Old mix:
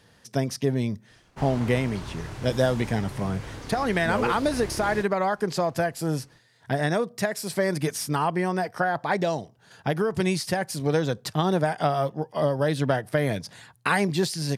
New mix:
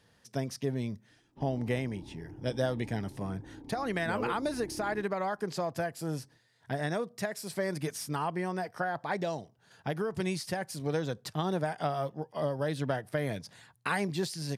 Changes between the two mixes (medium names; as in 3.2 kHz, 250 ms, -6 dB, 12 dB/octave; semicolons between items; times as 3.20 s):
speech -8.0 dB; background: add cascade formant filter u